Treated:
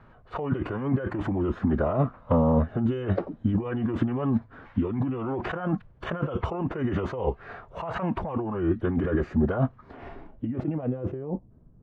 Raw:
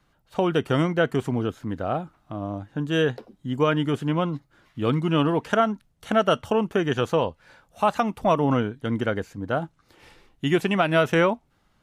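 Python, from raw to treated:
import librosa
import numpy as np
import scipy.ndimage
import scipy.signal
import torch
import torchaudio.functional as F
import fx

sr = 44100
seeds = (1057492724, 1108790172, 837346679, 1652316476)

y = fx.over_compress(x, sr, threshold_db=-32.0, ratio=-1.0)
y = fx.pitch_keep_formants(y, sr, semitones=-4.0)
y = fx.filter_sweep_lowpass(y, sr, from_hz=1500.0, to_hz=280.0, start_s=9.65, end_s=11.74, q=0.84)
y = F.gain(torch.from_numpy(y), 5.5).numpy()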